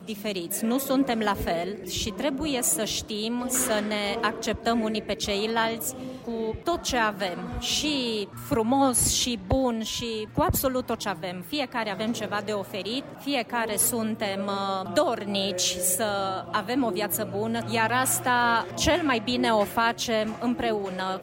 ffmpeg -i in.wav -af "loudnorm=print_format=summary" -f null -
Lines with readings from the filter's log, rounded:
Input Integrated:    -25.9 LUFS
Input True Peak:     -10.6 dBTP
Input LRA:             3.1 LU
Input Threshold:     -36.0 LUFS